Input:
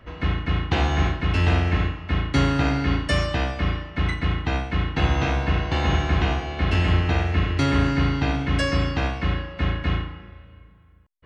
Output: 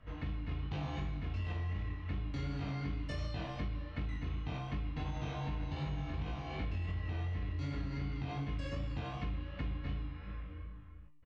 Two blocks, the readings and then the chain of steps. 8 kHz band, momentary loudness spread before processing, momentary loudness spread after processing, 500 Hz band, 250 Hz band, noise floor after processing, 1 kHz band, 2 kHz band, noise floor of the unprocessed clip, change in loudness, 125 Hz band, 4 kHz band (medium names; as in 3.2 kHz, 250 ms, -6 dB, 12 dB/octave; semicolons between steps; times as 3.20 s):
no reading, 6 LU, 3 LU, -19.0 dB, -17.0 dB, -48 dBFS, -19.0 dB, -21.0 dB, -50 dBFS, -16.5 dB, -15.0 dB, -20.5 dB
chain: flange 0.19 Hz, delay 6.3 ms, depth 4 ms, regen +77%; feedback comb 150 Hz, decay 0.94 s, harmonics all, mix 80%; dynamic bell 1.6 kHz, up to -6 dB, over -59 dBFS, Q 1.9; low-pass 6.2 kHz 12 dB/octave; chorus 2.7 Hz, delay 19 ms, depth 4.9 ms; level rider gain up to 8 dB; bass shelf 170 Hz +7.5 dB; peak limiter -24 dBFS, peak gain reduction 7.5 dB; doubling 21 ms -4.5 dB; compression 5:1, threshold -44 dBFS, peak gain reduction 17 dB; band-stop 360 Hz, Q 12; trim +7 dB